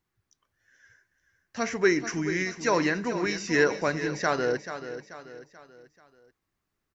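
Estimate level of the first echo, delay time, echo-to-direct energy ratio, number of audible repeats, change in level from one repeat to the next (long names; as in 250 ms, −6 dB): −11.0 dB, 435 ms, −10.0 dB, 4, −7.5 dB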